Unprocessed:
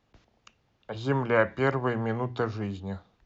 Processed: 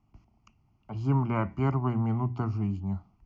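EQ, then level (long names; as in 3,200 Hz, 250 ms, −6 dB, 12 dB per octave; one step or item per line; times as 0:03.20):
tilt shelving filter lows +7.5 dB
phaser with its sweep stopped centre 2,500 Hz, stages 8
−1.5 dB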